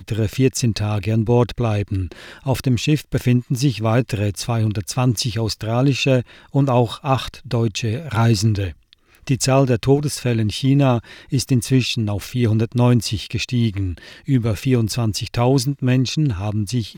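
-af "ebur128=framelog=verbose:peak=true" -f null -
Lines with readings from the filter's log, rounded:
Integrated loudness:
  I:         -19.6 LUFS
  Threshold: -29.7 LUFS
Loudness range:
  LRA:         1.6 LU
  Threshold: -39.7 LUFS
  LRA low:   -20.3 LUFS
  LRA high:  -18.7 LUFS
True peak:
  Peak:       -4.4 dBFS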